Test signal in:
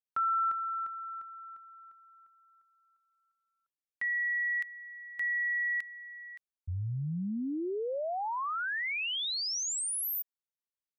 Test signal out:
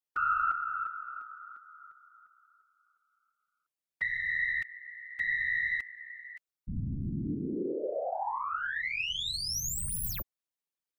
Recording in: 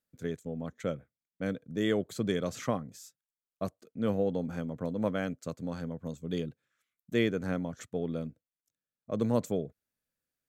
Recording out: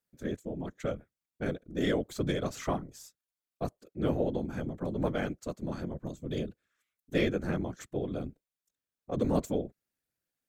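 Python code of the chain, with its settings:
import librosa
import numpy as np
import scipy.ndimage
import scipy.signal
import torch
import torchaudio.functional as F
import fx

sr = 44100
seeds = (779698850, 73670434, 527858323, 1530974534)

y = fx.tracing_dist(x, sr, depth_ms=0.022)
y = fx.whisperise(y, sr, seeds[0])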